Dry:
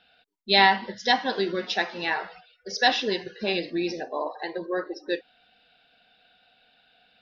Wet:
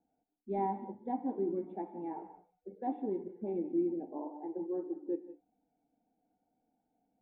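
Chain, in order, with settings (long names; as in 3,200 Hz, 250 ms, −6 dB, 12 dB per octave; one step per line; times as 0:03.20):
formant resonators in series u
reverb whose tail is shaped and stops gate 210 ms rising, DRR 12 dB
level +2 dB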